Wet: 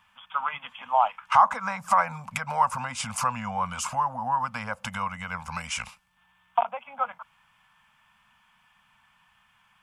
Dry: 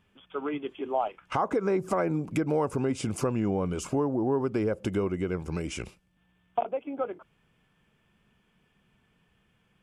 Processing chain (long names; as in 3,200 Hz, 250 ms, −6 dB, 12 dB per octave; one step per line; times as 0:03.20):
Chebyshev band-stop filter 240–490 Hz, order 3
low shelf with overshoot 660 Hz −12.5 dB, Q 3
level +7 dB